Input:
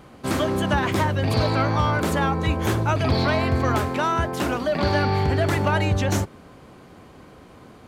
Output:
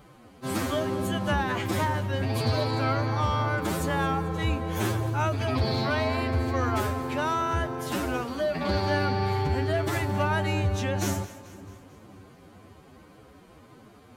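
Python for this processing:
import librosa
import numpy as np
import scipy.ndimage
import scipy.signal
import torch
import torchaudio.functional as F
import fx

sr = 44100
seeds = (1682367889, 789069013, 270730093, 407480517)

p1 = fx.high_shelf(x, sr, hz=10000.0, db=6.0)
p2 = fx.stretch_vocoder(p1, sr, factor=1.8)
p3 = p2 + fx.echo_split(p2, sr, split_hz=390.0, low_ms=510, high_ms=220, feedback_pct=52, wet_db=-16, dry=0)
y = F.gain(torch.from_numpy(p3), -5.0).numpy()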